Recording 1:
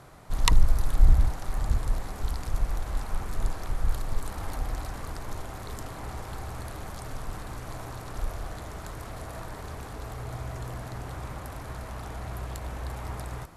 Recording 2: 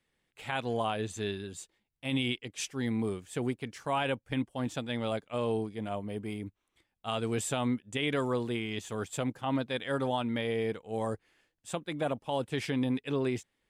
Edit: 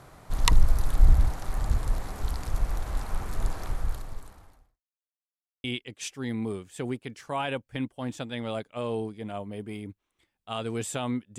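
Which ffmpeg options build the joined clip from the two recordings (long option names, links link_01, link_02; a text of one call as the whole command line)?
ffmpeg -i cue0.wav -i cue1.wav -filter_complex "[0:a]apad=whole_dur=11.38,atrim=end=11.38,asplit=2[link_01][link_02];[link_01]atrim=end=4.81,asetpts=PTS-STARTPTS,afade=type=out:start_time=3.68:duration=1.13:curve=qua[link_03];[link_02]atrim=start=4.81:end=5.64,asetpts=PTS-STARTPTS,volume=0[link_04];[1:a]atrim=start=2.21:end=7.95,asetpts=PTS-STARTPTS,afade=type=in:duration=0.004:curve=hsin[link_05];[link_03][link_04][link_05]concat=n=3:v=0:a=1" out.wav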